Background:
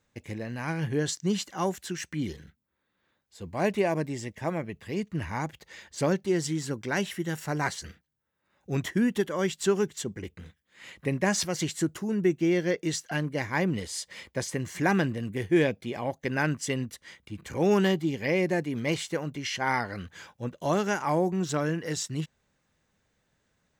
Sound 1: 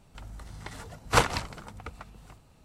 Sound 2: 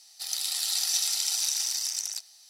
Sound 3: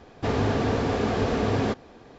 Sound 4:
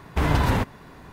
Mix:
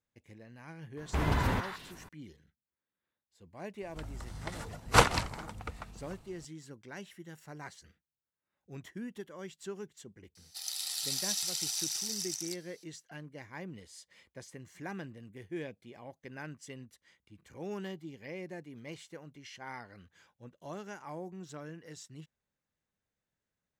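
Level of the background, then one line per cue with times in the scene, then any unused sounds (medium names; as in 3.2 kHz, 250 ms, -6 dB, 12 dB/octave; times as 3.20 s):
background -17 dB
0.97 s: add 4 -8.5 dB + repeats whose band climbs or falls 158 ms, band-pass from 1.5 kHz, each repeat 1.4 oct, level -1.5 dB
3.81 s: add 1
10.35 s: add 2 -7 dB
not used: 3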